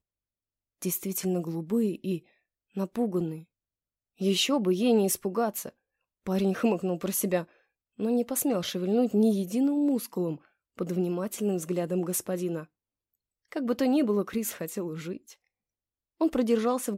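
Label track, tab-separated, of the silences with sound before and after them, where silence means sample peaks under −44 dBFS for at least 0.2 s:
2.190000	2.760000	silence
3.420000	4.200000	silence
5.690000	6.270000	silence
7.440000	7.990000	silence
10.360000	10.790000	silence
12.640000	13.520000	silence
15.330000	16.210000	silence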